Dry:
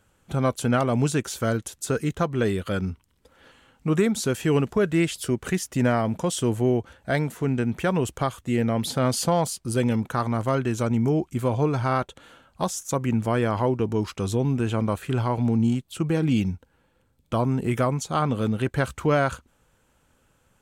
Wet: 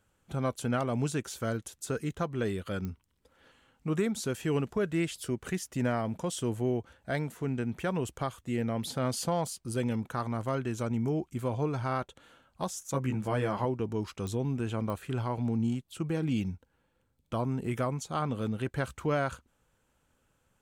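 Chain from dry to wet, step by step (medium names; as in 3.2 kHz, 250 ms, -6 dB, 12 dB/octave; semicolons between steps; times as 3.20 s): 12.92–13.65 s: doubling 15 ms -3 dB; clicks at 2.85/14.27/14.90 s, -17 dBFS; trim -8 dB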